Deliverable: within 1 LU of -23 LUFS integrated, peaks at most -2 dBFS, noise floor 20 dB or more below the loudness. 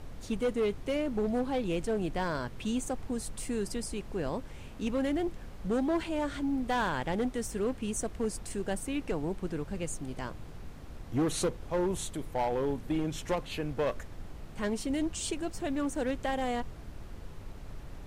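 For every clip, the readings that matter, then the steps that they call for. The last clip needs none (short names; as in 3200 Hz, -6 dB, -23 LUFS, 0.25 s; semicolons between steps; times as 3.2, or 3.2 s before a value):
clipped 1.4%; flat tops at -24.0 dBFS; noise floor -46 dBFS; noise floor target -54 dBFS; loudness -33.5 LUFS; peak -24.0 dBFS; loudness target -23.0 LUFS
-> clip repair -24 dBFS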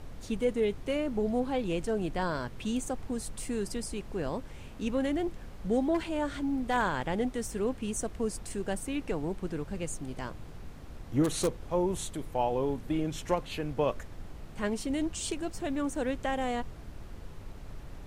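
clipped 0.0%; noise floor -46 dBFS; noise floor target -53 dBFS
-> noise print and reduce 7 dB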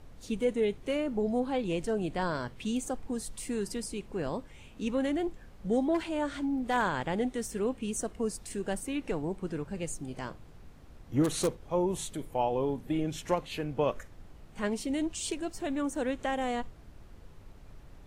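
noise floor -52 dBFS; noise floor target -53 dBFS
-> noise print and reduce 6 dB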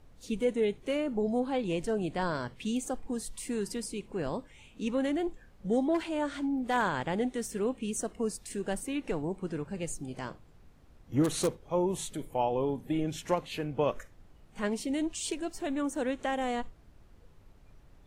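noise floor -57 dBFS; loudness -32.5 LUFS; peak -14.5 dBFS; loudness target -23.0 LUFS
-> gain +9.5 dB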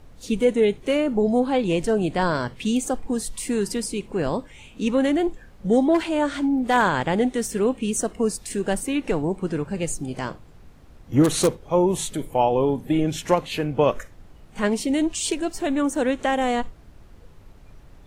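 loudness -23.0 LUFS; peak -5.0 dBFS; noise floor -48 dBFS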